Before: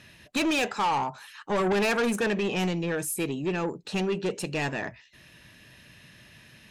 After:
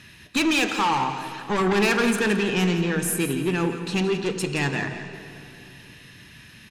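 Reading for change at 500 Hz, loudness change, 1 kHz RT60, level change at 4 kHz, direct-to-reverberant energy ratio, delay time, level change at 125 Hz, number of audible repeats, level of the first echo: +2.5 dB, +4.5 dB, 2.9 s, +6.0 dB, 6.0 dB, 170 ms, +6.5 dB, 2, −11.0 dB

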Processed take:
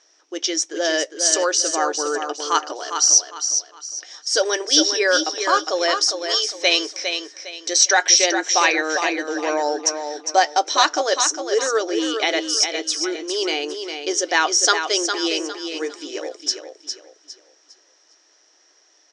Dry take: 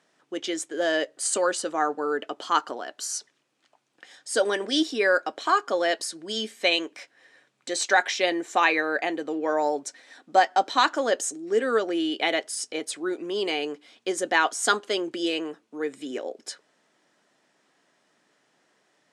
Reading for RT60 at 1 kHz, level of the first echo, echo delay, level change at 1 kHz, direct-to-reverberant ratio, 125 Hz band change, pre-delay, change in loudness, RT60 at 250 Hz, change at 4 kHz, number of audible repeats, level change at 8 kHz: no reverb audible, −7.0 dB, 406 ms, +3.5 dB, no reverb audible, can't be measured, no reverb audible, +6.5 dB, no reverb audible, +10.5 dB, 3, +14.0 dB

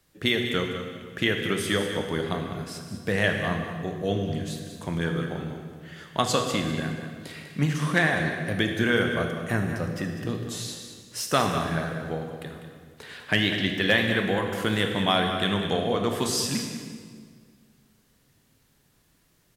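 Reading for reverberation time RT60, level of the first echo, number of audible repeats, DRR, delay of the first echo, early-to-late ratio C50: 1.8 s, −10.5 dB, 1, 3.0 dB, 198 ms, 4.0 dB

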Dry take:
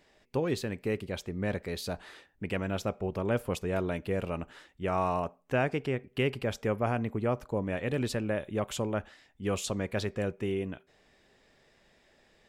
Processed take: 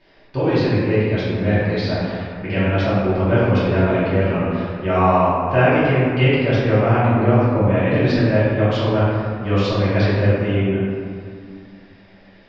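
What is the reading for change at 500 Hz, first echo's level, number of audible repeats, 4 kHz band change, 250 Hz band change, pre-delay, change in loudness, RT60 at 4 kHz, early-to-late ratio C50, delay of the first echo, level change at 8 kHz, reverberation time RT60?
+13.5 dB, no echo audible, no echo audible, +11.5 dB, +15.0 dB, 3 ms, +14.5 dB, 1.2 s, −3.0 dB, no echo audible, can't be measured, 2.2 s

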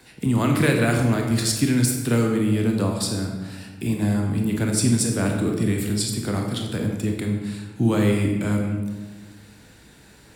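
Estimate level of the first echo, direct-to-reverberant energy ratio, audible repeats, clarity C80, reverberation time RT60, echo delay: no echo audible, 1.5 dB, no echo audible, 6.0 dB, 1.3 s, no echo audible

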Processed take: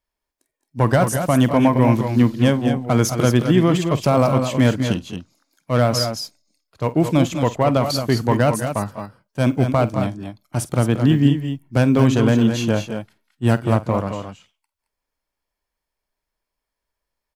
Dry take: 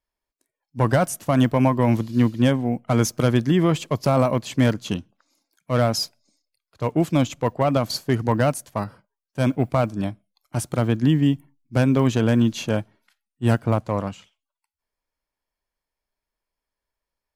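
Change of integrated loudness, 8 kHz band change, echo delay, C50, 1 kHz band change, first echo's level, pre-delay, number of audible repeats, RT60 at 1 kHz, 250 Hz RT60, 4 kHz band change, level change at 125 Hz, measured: +3.5 dB, +3.5 dB, 49 ms, no reverb audible, +3.5 dB, −16.5 dB, no reverb audible, 2, no reverb audible, no reverb audible, +3.5 dB, +3.5 dB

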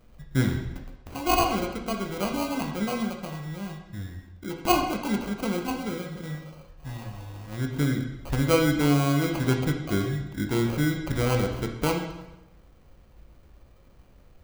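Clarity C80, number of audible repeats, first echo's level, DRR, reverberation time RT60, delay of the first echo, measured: 8.5 dB, no echo audible, no echo audible, 2.0 dB, 0.95 s, no echo audible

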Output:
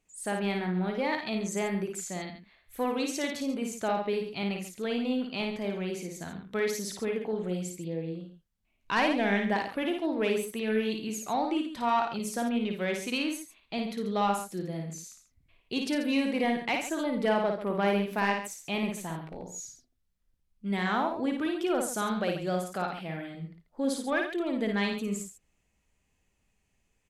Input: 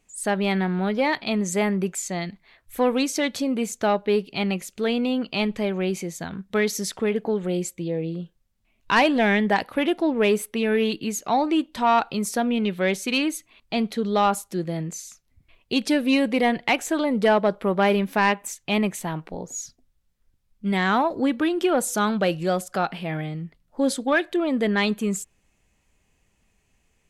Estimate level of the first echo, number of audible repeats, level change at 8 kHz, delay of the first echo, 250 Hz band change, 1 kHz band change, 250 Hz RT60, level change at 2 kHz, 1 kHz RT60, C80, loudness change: −4.0 dB, 3, −7.0 dB, 55 ms, −7.0 dB, −7.0 dB, no reverb audible, −7.0 dB, no reverb audible, no reverb audible, −7.0 dB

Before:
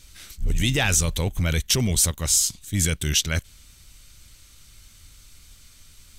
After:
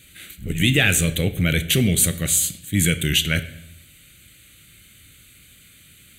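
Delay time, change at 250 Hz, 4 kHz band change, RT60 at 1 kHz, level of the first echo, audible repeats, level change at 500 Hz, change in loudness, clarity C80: no echo audible, +6.5 dB, +3.0 dB, 0.80 s, no echo audible, no echo audible, +4.0 dB, +3.0 dB, 17.0 dB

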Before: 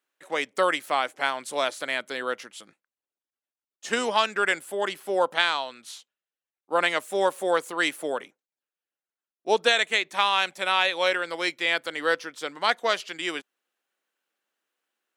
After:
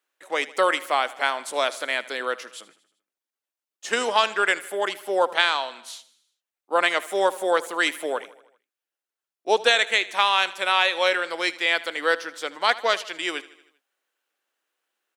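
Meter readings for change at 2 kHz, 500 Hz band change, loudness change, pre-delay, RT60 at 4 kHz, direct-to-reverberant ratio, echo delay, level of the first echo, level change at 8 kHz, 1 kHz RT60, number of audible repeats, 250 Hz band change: +2.5 dB, +2.0 dB, +2.5 dB, no reverb audible, no reverb audible, no reverb audible, 78 ms, −18.5 dB, +2.5 dB, no reverb audible, 4, −0.5 dB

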